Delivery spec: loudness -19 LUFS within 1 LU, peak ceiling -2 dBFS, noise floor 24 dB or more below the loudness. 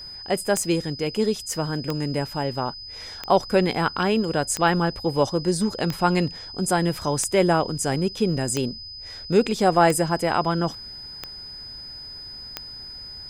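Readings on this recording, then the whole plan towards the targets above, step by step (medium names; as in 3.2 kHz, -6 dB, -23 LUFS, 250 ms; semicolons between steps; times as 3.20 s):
clicks found 10; steady tone 5 kHz; tone level -36 dBFS; loudness -23.0 LUFS; peak level -5.0 dBFS; loudness target -19.0 LUFS
-> de-click; band-stop 5 kHz, Q 30; trim +4 dB; peak limiter -2 dBFS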